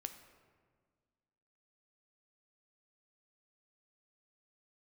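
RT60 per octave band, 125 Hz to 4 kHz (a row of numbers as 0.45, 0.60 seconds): 2.0, 2.1, 1.8, 1.6, 1.3, 0.95 seconds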